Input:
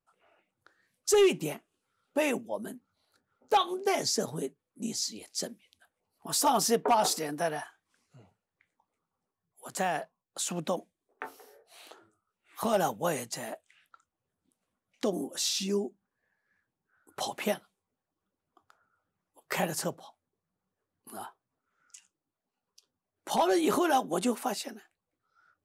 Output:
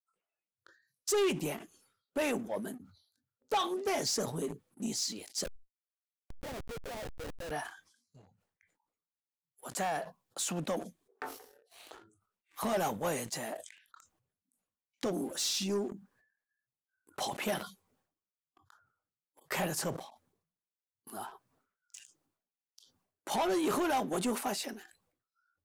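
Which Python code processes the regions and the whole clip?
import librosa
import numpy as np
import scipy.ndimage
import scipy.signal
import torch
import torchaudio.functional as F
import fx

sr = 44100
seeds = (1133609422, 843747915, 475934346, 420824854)

y = fx.chain(x, sr, fx.formant_cascade(vowel='e'),
    fx.schmitt(flips_db=-44.0),
    fx.env_flatten(amount_pct=100), at=(5.44, 7.51))
y = fx.noise_reduce_blind(y, sr, reduce_db=19)
y = fx.leveller(y, sr, passes=2)
y = fx.sustainer(y, sr, db_per_s=100.0)
y = y * 10.0 ** (-8.0 / 20.0)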